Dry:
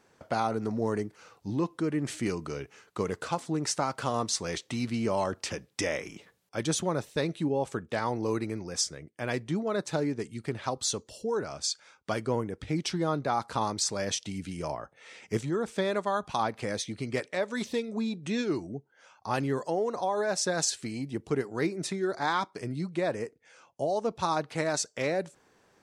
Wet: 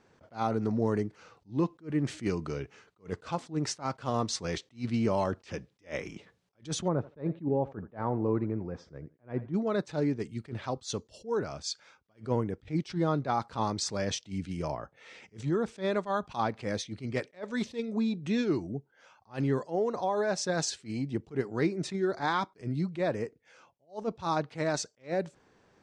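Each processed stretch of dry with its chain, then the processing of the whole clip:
0:06.88–0:09.54: low-pass filter 1,200 Hz + feedback echo with a high-pass in the loop 82 ms, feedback 26%, high-pass 260 Hz, level −18 dB
whole clip: low-pass filter 6,000 Hz 12 dB per octave; low-shelf EQ 290 Hz +6 dB; level that may rise only so fast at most 270 dB per second; level −1.5 dB

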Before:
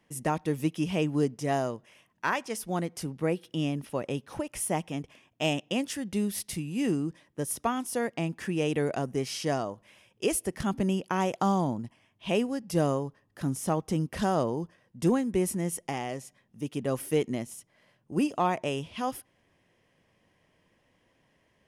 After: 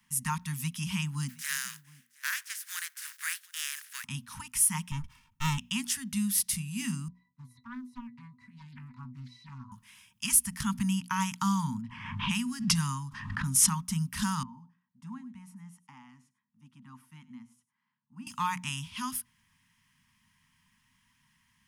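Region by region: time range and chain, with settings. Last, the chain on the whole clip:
0:01.28–0:04.03: compressing power law on the bin magnitudes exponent 0.42 + four-pole ladder high-pass 1,500 Hz, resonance 65% + single-tap delay 718 ms −24 dB
0:04.91–0:05.58: lower of the sound and its delayed copy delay 2.2 ms + tilt shelving filter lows +8 dB, about 1,400 Hz
0:07.08–0:09.72: resonances in every octave B, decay 0.14 s + highs frequency-modulated by the lows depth 0.58 ms
0:11.81–0:13.85: low-pass that shuts in the quiet parts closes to 1,100 Hz, open at −26.5 dBFS + background raised ahead of every attack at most 51 dB per second
0:14.43–0:18.27: resonant band-pass 500 Hz, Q 2.2 + single-tap delay 99 ms −17.5 dB
whole clip: Chebyshev band-stop filter 250–910 Hz, order 5; high-shelf EQ 5,300 Hz +11 dB; mains-hum notches 60/120/180/240 Hz

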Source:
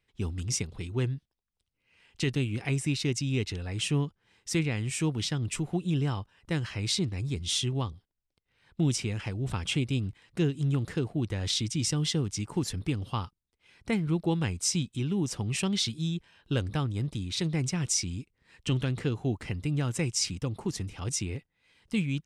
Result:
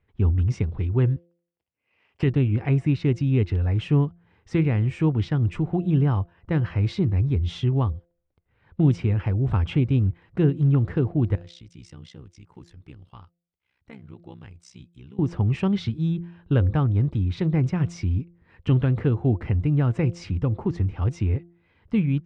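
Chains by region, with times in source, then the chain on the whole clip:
0:01.16–0:02.23: lower of the sound and its delayed copy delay 0.39 ms + high-pass filter 920 Hz 6 dB per octave
0:11.35–0:15.19: amplitude modulation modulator 64 Hz, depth 80% + first-order pre-emphasis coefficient 0.9
whole clip: low-pass filter 1,500 Hz 12 dB per octave; parametric band 83 Hz +8.5 dB 0.83 octaves; hum removal 171.9 Hz, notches 4; level +6.5 dB

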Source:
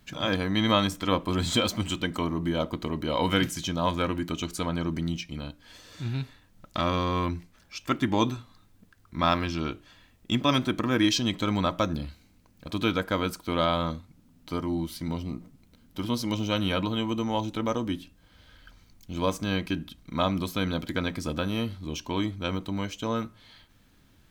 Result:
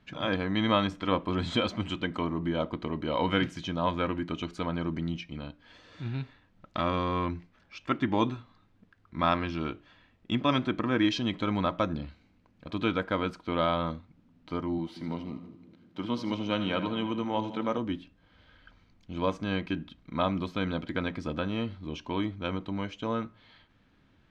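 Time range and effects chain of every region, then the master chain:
0:14.78–0:17.78: high-pass filter 130 Hz + echo with a time of its own for lows and highs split 450 Hz, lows 180 ms, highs 80 ms, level −12 dB
whole clip: low-pass filter 3,000 Hz 12 dB per octave; low-shelf EQ 76 Hz −7 dB; level −1.5 dB

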